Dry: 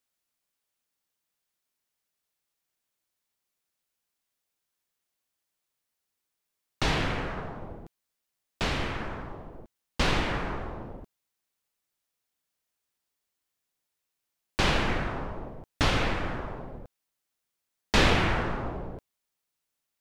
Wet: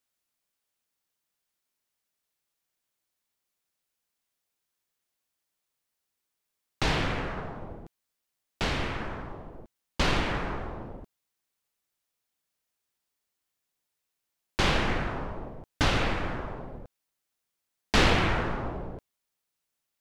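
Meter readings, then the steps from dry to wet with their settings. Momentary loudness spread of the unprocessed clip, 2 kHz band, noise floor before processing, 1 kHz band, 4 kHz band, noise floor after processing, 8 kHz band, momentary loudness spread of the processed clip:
19 LU, 0.0 dB, -84 dBFS, 0.0 dB, 0.0 dB, -84 dBFS, 0.0 dB, 19 LU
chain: Doppler distortion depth 0.39 ms

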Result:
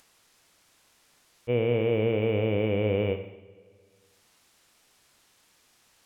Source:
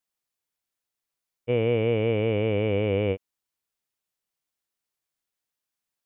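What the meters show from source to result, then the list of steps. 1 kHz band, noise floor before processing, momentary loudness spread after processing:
-1.5 dB, under -85 dBFS, 10 LU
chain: Schroeder reverb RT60 1 s, combs from 33 ms, DRR 8 dB; upward compressor, threshold -40 dBFS; decimation joined by straight lines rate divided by 2×; gain -2 dB

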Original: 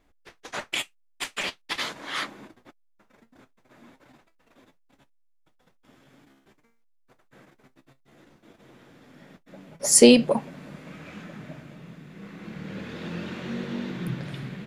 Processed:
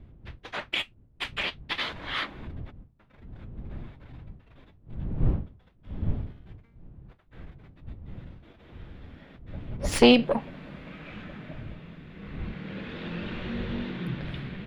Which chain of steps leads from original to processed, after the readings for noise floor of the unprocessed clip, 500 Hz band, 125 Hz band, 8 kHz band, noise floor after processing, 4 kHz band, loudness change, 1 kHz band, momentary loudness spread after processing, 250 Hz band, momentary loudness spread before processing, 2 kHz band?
-64 dBFS, -3.5 dB, +5.0 dB, -18.0 dB, -59 dBFS, -1.0 dB, -5.0 dB, +1.5 dB, 18 LU, -2.5 dB, 26 LU, 0.0 dB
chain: one diode to ground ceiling -18.5 dBFS; wind noise 110 Hz -36 dBFS; resonant high shelf 4900 Hz -12.5 dB, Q 1.5; gain -1 dB

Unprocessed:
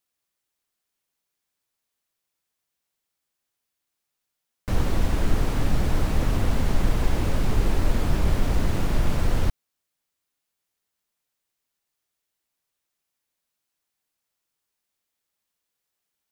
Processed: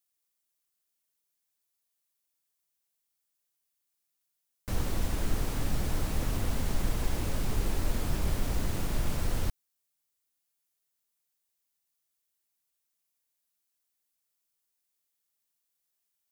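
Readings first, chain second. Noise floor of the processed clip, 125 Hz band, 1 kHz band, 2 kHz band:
-81 dBFS, -8.0 dB, -7.5 dB, -7.0 dB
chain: high shelf 5300 Hz +11 dB; gain -8 dB

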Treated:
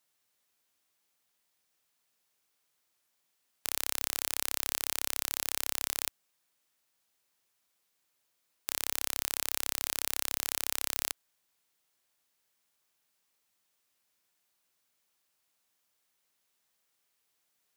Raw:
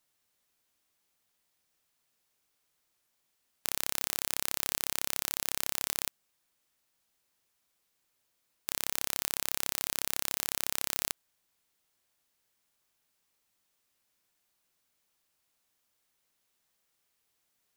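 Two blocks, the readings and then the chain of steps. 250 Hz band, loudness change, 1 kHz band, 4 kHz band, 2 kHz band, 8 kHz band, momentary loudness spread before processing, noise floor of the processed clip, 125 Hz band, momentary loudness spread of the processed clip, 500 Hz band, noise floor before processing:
-3.0 dB, 0.0 dB, -0.5 dB, 0.0 dB, 0.0 dB, 0.0 dB, 5 LU, -78 dBFS, -4.5 dB, 5 LU, -1.5 dB, -78 dBFS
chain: HPF 56 Hz 6 dB/oct; low shelf 350 Hz -4 dB

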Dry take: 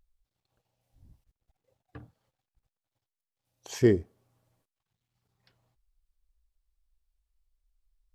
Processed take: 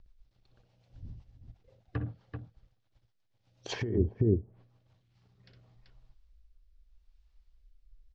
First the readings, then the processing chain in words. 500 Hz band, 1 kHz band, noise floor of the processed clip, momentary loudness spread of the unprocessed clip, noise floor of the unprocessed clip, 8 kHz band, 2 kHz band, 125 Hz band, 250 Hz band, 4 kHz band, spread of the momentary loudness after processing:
-4.5 dB, +3.5 dB, -74 dBFS, 12 LU, under -85 dBFS, -6.5 dB, -2.5 dB, +4.0 dB, -3.0 dB, +2.0 dB, 21 LU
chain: LPF 5500 Hz 24 dB/oct; low shelf 280 Hz +4 dB; on a send: tapped delay 61/386 ms -7/-8.5 dB; on the sum: rotary speaker horn 8 Hz, later 0.8 Hz, at 4.49; negative-ratio compressor -31 dBFS, ratio -1; treble ducked by the level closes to 430 Hz, closed at -29.5 dBFS; bell 110 Hz +6.5 dB 0.23 oct; gain +3.5 dB

